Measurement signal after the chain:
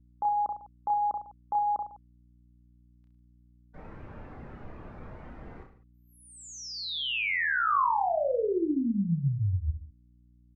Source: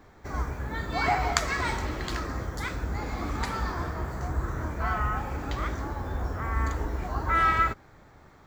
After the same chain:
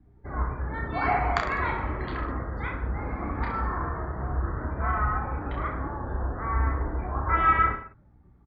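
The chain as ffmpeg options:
-af "lowpass=2.7k,afftdn=nr=21:nf=-45,aecho=1:1:30|64.5|104.2|149.8|202.3:0.631|0.398|0.251|0.158|0.1,aeval=exprs='val(0)+0.00141*(sin(2*PI*60*n/s)+sin(2*PI*2*60*n/s)/2+sin(2*PI*3*60*n/s)/3+sin(2*PI*4*60*n/s)/4+sin(2*PI*5*60*n/s)/5)':c=same,adynamicequalizer=threshold=0.0126:dfrequency=1100:dqfactor=3.7:tfrequency=1100:tqfactor=3.7:attack=5:release=100:ratio=0.375:range=2:mode=boostabove:tftype=bell,volume=-1.5dB"

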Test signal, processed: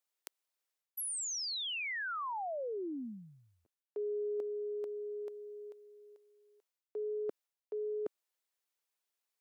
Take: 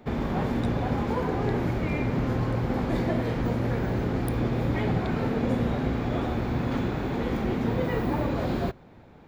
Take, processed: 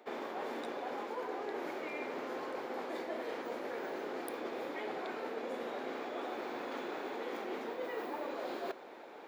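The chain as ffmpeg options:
-af "highpass=f=360:w=0.5412,highpass=f=360:w=1.3066,areverse,acompressor=threshold=-45dB:ratio=4,areverse,volume=5dB"

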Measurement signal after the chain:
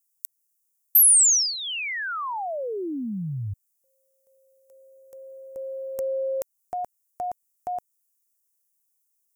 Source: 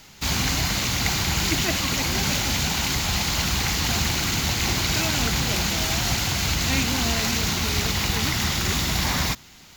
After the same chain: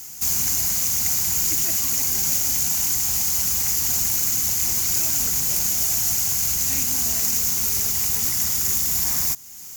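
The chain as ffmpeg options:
-af "aexciter=amount=14.4:drive=1.6:freq=5.7k,acompressor=threshold=-29dB:ratio=1.5,volume=-3.5dB"

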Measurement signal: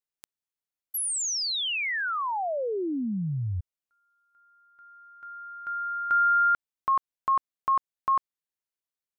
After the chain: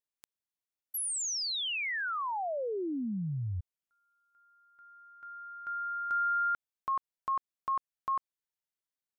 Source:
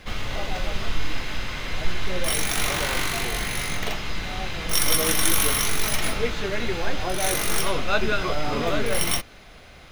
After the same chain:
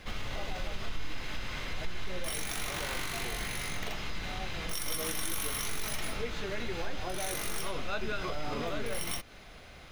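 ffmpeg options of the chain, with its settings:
-af "acompressor=threshold=-25dB:ratio=2.5:attack=0.12:release=329:knee=6:detection=peak,volume=-4dB"

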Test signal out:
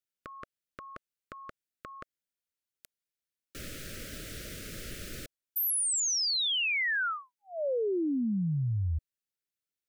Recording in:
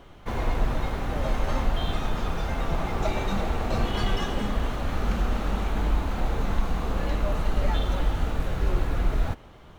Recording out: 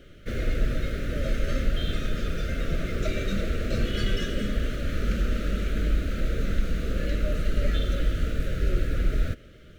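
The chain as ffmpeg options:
-af "asuperstop=centerf=900:order=8:qfactor=1.3"

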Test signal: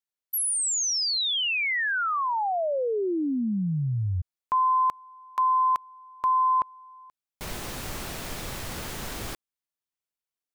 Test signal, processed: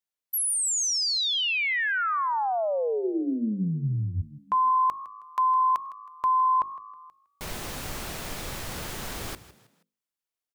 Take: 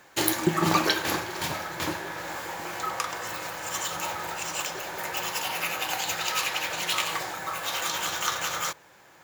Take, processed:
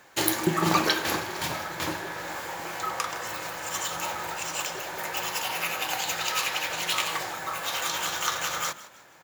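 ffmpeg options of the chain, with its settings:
-filter_complex "[0:a]bandreject=f=50:t=h:w=6,bandreject=f=100:t=h:w=6,bandreject=f=150:t=h:w=6,bandreject=f=200:t=h:w=6,bandreject=f=250:t=h:w=6,bandreject=f=300:t=h:w=6,bandreject=f=350:t=h:w=6,bandreject=f=400:t=h:w=6,asplit=2[a][b];[b]asplit=3[c][d][e];[c]adelay=159,afreqshift=53,volume=-17dB[f];[d]adelay=318,afreqshift=106,volume=-25.4dB[g];[e]adelay=477,afreqshift=159,volume=-33.8dB[h];[f][g][h]amix=inputs=3:normalize=0[i];[a][i]amix=inputs=2:normalize=0"

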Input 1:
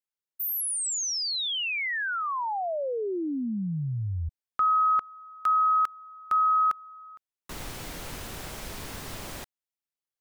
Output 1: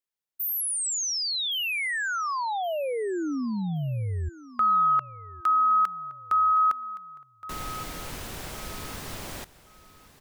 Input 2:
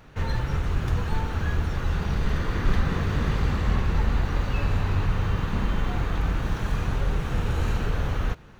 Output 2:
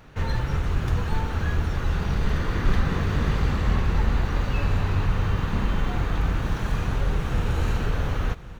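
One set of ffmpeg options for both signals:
-af "aecho=1:1:1118|2236|3354:0.133|0.0387|0.0112,volume=1dB"

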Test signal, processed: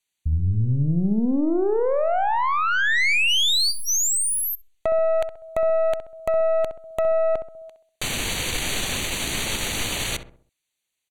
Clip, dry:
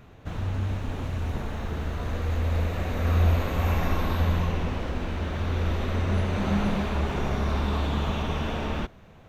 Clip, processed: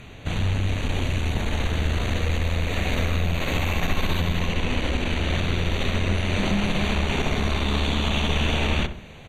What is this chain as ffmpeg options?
-filter_complex "[0:a]acrossover=split=4700[a][b];[b]acompressor=threshold=-36dB:ratio=4:attack=1:release=60[c];[a][c]amix=inputs=2:normalize=0,lowpass=11k,highshelf=f=1.8k:t=q:w=1.5:g=7,acompressor=threshold=-26dB:ratio=4,aeval=exprs='(tanh(17.8*val(0)+0.5)-tanh(0.5))/17.8':c=same,asuperstop=centerf=5200:order=12:qfactor=4.6,asplit=2[d][e];[e]adelay=65,lowpass=f=1.2k:p=1,volume=-8.5dB,asplit=2[f][g];[g]adelay=65,lowpass=f=1.2k:p=1,volume=0.46,asplit=2[h][i];[i]adelay=65,lowpass=f=1.2k:p=1,volume=0.46,asplit=2[j][k];[k]adelay=65,lowpass=f=1.2k:p=1,volume=0.46,asplit=2[l][m];[m]adelay=65,lowpass=f=1.2k:p=1,volume=0.46[n];[f][h][j][l][n]amix=inputs=5:normalize=0[o];[d][o]amix=inputs=2:normalize=0,volume=9dB"

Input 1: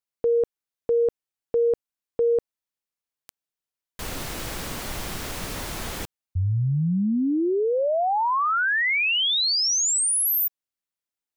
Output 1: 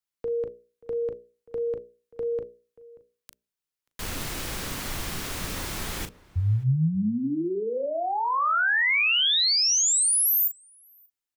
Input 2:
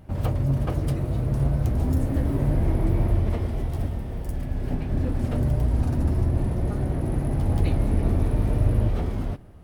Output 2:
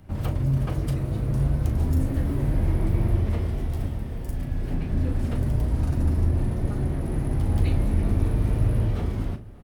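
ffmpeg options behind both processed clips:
-filter_complex "[0:a]equalizer=f=690:w=1.3:g=-4,bandreject=f=60:t=h:w=6,bandreject=f=120:t=h:w=6,bandreject=f=180:t=h:w=6,bandreject=f=240:t=h:w=6,bandreject=f=300:t=h:w=6,bandreject=f=360:t=h:w=6,bandreject=f=420:t=h:w=6,bandreject=f=480:t=h:w=6,bandreject=f=540:t=h:w=6,bandreject=f=600:t=h:w=6,acrossover=split=160|1300|3500[a][b][c][d];[b]alimiter=level_in=1.5dB:limit=-24dB:level=0:latency=1:release=15,volume=-1.5dB[e];[a][e][c][d]amix=inputs=4:normalize=0,asplit=2[f][g];[g]adelay=38,volume=-10dB[h];[f][h]amix=inputs=2:normalize=0,asplit=2[i][j];[j]adelay=583.1,volume=-21dB,highshelf=f=4k:g=-13.1[k];[i][k]amix=inputs=2:normalize=0"

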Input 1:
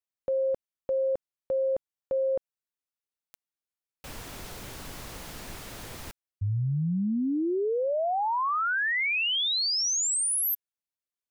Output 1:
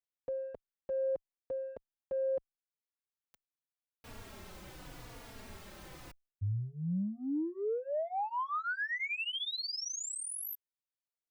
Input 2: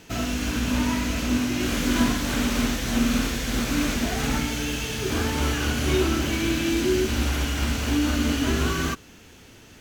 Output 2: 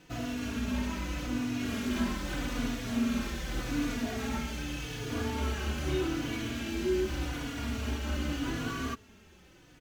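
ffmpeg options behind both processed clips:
-filter_complex "[0:a]equalizer=f=13k:t=o:w=2.4:g=-6,asplit=2[a][b];[b]asoftclip=type=tanh:threshold=-25dB,volume=-9.5dB[c];[a][c]amix=inputs=2:normalize=0,asplit=2[d][e];[e]adelay=3.5,afreqshift=-0.83[f];[d][f]amix=inputs=2:normalize=1,volume=-7dB"

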